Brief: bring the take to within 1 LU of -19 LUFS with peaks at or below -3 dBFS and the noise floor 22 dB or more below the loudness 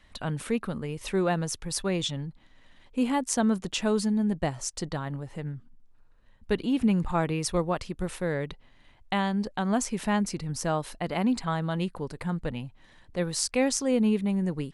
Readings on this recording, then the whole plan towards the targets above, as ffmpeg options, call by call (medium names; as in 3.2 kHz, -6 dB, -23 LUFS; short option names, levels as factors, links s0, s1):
loudness -29.0 LUFS; peak level -9.5 dBFS; loudness target -19.0 LUFS
-> -af "volume=3.16,alimiter=limit=0.708:level=0:latency=1"